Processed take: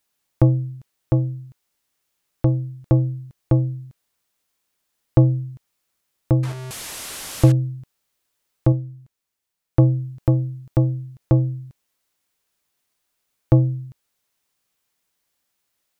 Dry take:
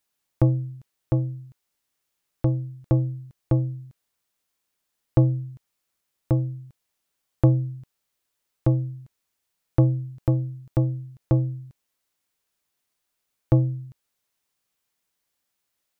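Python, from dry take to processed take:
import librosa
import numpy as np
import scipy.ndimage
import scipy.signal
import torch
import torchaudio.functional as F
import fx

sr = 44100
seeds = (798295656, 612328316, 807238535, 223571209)

y = fx.delta_mod(x, sr, bps=64000, step_db=-30.0, at=(6.43, 7.52))
y = fx.upward_expand(y, sr, threshold_db=-27.0, expansion=1.5, at=(8.72, 9.82))
y = y * librosa.db_to_amplitude(4.0)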